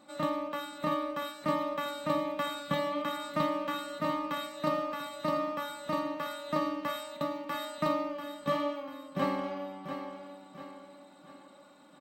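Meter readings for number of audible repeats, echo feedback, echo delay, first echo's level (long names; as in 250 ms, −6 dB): 4, 43%, 691 ms, −9.0 dB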